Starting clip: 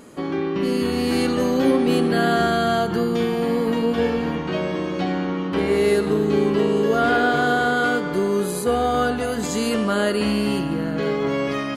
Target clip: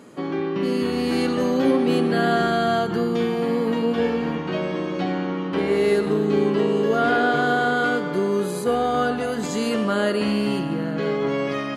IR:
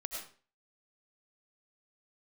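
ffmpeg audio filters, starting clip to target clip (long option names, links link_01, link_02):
-filter_complex "[0:a]highpass=frequency=96:width=0.5412,highpass=frequency=96:width=1.3066,highshelf=frequency=8300:gain=-9.5,asplit=2[link_01][link_02];[1:a]atrim=start_sample=2205,highshelf=frequency=12000:gain=10[link_03];[link_02][link_03]afir=irnorm=-1:irlink=0,volume=-15dB[link_04];[link_01][link_04]amix=inputs=2:normalize=0,volume=-2dB"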